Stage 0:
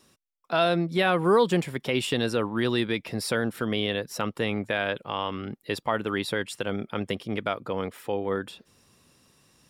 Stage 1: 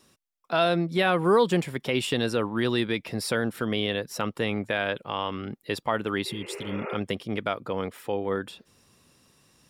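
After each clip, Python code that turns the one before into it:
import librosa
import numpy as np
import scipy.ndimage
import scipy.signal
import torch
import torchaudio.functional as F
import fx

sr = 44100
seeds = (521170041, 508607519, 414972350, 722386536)

y = fx.spec_repair(x, sr, seeds[0], start_s=6.29, length_s=0.63, low_hz=330.0, high_hz=2900.0, source='both')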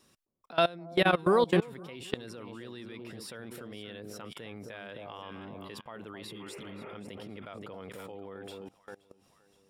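y = fx.echo_alternate(x, sr, ms=262, hz=890.0, feedback_pct=56, wet_db=-7.5)
y = fx.level_steps(y, sr, step_db=22)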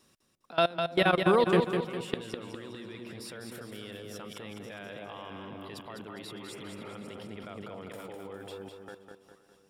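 y = fx.echo_feedback(x, sr, ms=203, feedback_pct=46, wet_db=-6.0)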